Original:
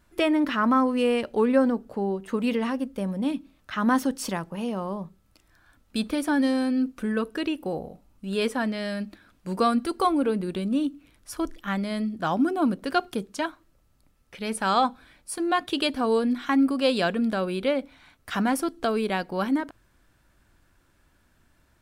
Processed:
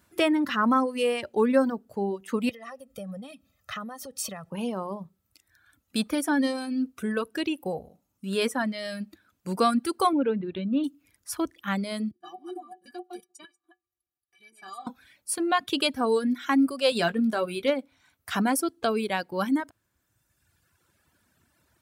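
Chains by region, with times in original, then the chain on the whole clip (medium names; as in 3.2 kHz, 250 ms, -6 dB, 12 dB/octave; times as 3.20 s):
2.49–4.50 s: compression 12:1, threshold -33 dBFS + comb 1.6 ms, depth 80%
10.13–10.84 s: steep low-pass 4.2 kHz 96 dB/octave + treble shelf 3 kHz -6 dB
12.11–14.87 s: chunks repeated in reverse 134 ms, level -3 dB + level held to a coarse grid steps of 13 dB + inharmonic resonator 350 Hz, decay 0.22 s, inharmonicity 0.03
16.90–17.70 s: hard clipper -14 dBFS + doubling 18 ms -8 dB
whole clip: high-pass 73 Hz 24 dB/octave; reverb removal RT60 1.5 s; treble shelf 6.2 kHz +7 dB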